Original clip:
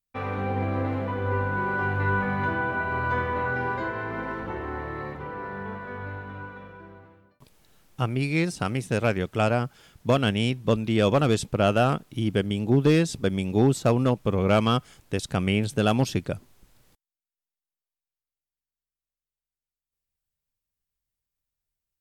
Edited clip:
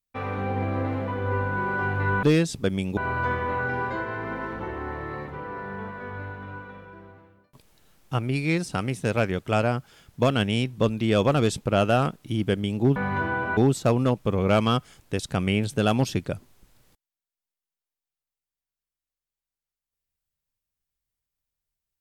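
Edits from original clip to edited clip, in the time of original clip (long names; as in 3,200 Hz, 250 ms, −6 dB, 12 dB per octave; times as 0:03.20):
0:02.23–0:02.84: swap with 0:12.83–0:13.57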